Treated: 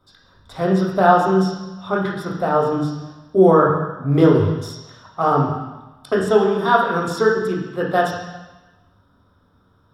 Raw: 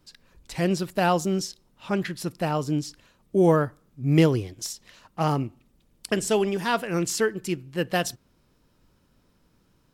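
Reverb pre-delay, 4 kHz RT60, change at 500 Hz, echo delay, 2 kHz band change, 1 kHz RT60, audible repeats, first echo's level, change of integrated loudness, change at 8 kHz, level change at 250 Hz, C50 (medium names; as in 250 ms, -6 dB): 3 ms, 1.2 s, +8.5 dB, no echo, +6.5 dB, 1.1 s, no echo, no echo, +7.5 dB, no reading, +6.0 dB, 3.5 dB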